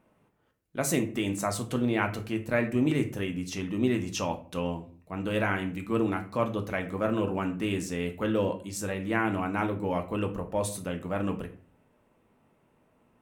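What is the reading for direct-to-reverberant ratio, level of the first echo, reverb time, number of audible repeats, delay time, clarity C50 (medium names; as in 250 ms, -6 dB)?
4.5 dB, no echo, 0.45 s, no echo, no echo, 12.5 dB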